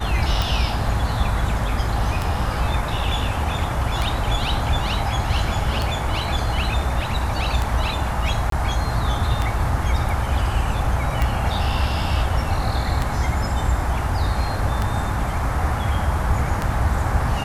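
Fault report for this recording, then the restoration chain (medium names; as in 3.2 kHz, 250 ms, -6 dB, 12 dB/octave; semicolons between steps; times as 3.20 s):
tick 33 1/3 rpm
8.50–8.52 s: dropout 23 ms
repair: de-click; interpolate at 8.50 s, 23 ms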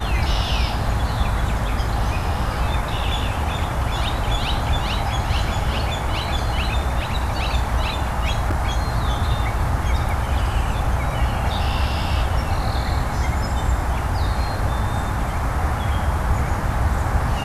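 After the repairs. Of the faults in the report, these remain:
nothing left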